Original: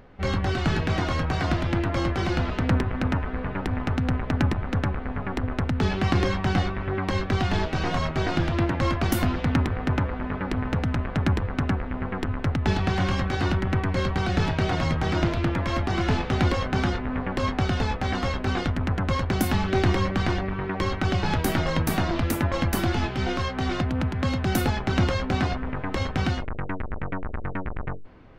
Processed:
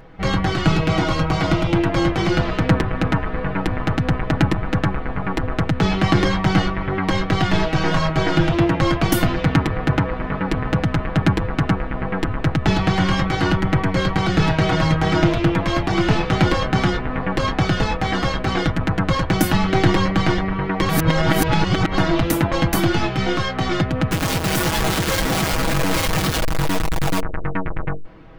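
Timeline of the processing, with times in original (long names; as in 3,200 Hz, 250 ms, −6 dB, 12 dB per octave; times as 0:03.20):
0:00.67–0:01.74: notch filter 1,700 Hz, Q 5.4
0:20.89–0:21.98: reverse
0:24.11–0:27.20: sign of each sample alone
whole clip: comb filter 6.2 ms, depth 64%; level +5.5 dB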